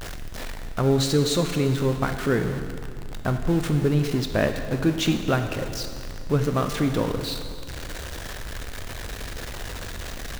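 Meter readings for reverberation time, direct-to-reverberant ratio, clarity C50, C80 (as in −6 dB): 2.1 s, 6.5 dB, 7.5 dB, 8.5 dB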